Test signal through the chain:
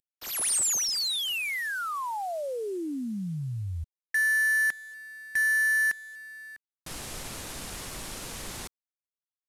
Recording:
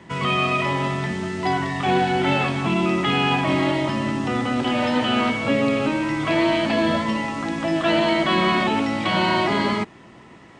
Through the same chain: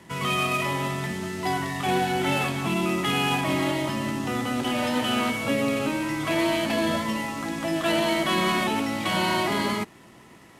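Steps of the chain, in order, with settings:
variable-slope delta modulation 64 kbit/s
high-shelf EQ 5,000 Hz +7.5 dB
level −4.5 dB

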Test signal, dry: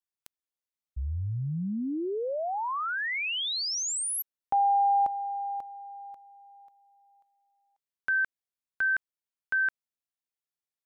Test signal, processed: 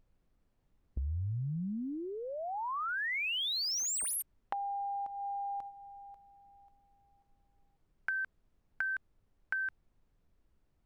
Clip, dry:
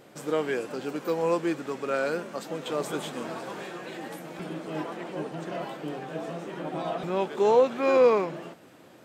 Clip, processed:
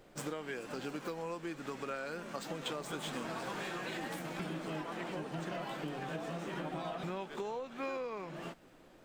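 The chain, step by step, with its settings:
running median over 3 samples
noise gate −41 dBFS, range −11 dB
downward compressor 12 to 1, threshold −36 dBFS
dynamic equaliser 450 Hz, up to −6 dB, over −52 dBFS, Q 0.79
background noise brown −74 dBFS
level +3.5 dB

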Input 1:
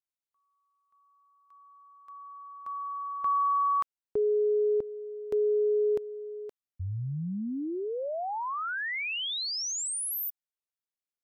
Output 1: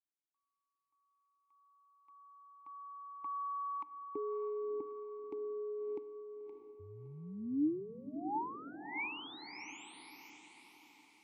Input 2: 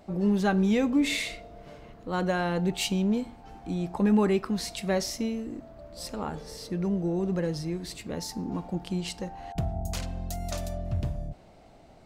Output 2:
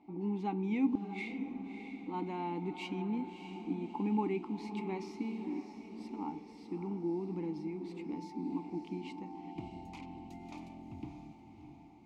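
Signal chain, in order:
formant filter u
gate with flip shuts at −25 dBFS, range −34 dB
feedback delay with all-pass diffusion 624 ms, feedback 48%, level −8.5 dB
level +4 dB

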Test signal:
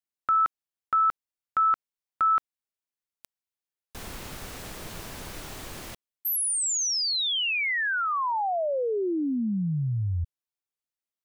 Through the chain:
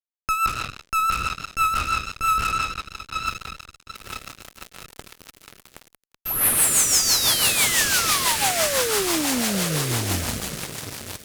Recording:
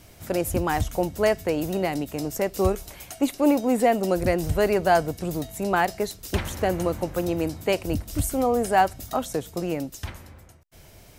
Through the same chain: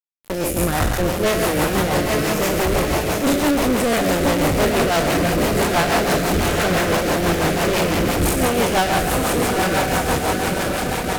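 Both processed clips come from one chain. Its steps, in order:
peak hold with a decay on every bin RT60 1.93 s
harmonic generator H 3 −40 dB, 4 −11 dB, 7 −21 dB, 8 −43 dB, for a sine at −3.5 dBFS
on a send: feedback delay with all-pass diffusion 918 ms, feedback 65%, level −8 dB
on the sum: fuzz pedal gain 29 dB, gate −35 dBFS
rotating-speaker cabinet horn 6 Hz

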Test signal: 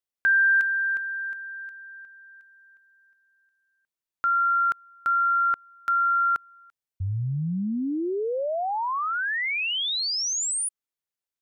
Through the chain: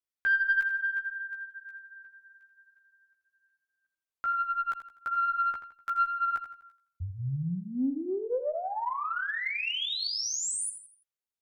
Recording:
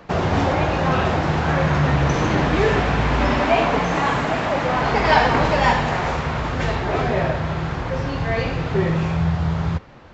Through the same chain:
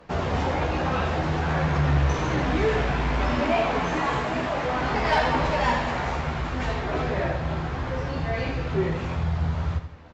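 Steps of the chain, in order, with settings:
multi-voice chorus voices 6, 0.53 Hz, delay 14 ms, depth 2.3 ms
harmonic generator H 2 −16 dB, 5 −24 dB, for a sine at −5.5 dBFS
repeating echo 83 ms, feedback 39%, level −10.5 dB
level −5 dB

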